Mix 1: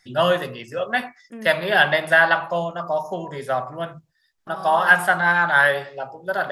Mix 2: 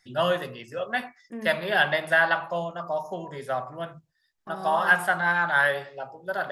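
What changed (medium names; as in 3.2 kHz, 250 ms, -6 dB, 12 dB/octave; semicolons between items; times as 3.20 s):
first voice -5.5 dB; reverb: on, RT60 0.45 s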